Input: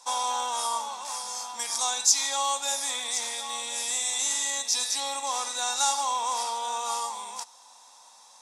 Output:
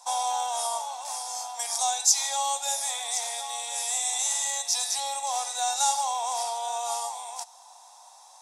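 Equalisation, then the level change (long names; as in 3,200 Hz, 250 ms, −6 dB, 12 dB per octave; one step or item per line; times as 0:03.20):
high-pass with resonance 710 Hz, resonance Q 4.9
high-shelf EQ 6,500 Hz +9 dB
dynamic equaliser 1,100 Hz, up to −7 dB, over −37 dBFS, Q 2
−4.5 dB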